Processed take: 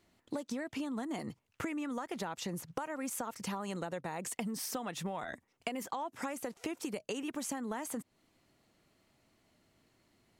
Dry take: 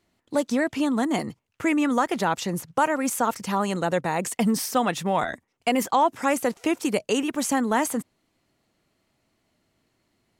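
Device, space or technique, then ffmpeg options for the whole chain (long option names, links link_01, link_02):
serial compression, leveller first: -af "acompressor=threshold=-25dB:ratio=2.5,acompressor=threshold=-36dB:ratio=6"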